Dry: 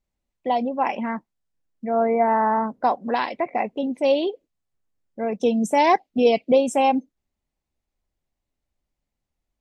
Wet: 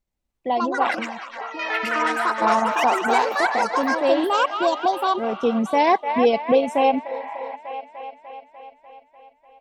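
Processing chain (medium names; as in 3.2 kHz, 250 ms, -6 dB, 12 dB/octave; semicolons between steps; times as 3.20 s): feedback echo behind a band-pass 297 ms, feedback 68%, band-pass 1.3 kHz, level -5 dB; dynamic bell 7.6 kHz, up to -7 dB, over -53 dBFS, Q 1.8; transient shaper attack -1 dB, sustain -5 dB; 0.99–2.42 s: compression 5:1, threshold -31 dBFS, peak gain reduction 14.5 dB; 7.10–7.53 s: spectral replace 630–3500 Hz before; ever faster or slower copies 246 ms, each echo +6 st, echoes 3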